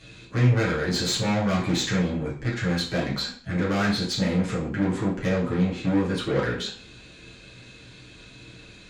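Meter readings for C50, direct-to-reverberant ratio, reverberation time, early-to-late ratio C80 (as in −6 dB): 6.0 dB, −7.5 dB, 0.50 s, 10.5 dB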